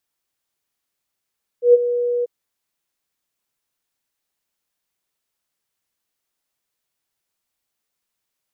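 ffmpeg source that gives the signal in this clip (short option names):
-f lavfi -i "aevalsrc='0.562*sin(2*PI*484*t)':d=0.641:s=44100,afade=t=in:d=0.118,afade=t=out:st=0.118:d=0.029:silence=0.237,afade=t=out:st=0.62:d=0.021"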